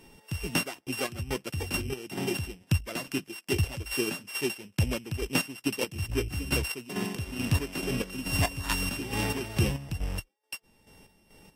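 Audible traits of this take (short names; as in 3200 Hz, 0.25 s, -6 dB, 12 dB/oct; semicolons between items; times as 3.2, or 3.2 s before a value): a buzz of ramps at a fixed pitch in blocks of 16 samples; chopped level 2.3 Hz, depth 65%, duty 45%; Vorbis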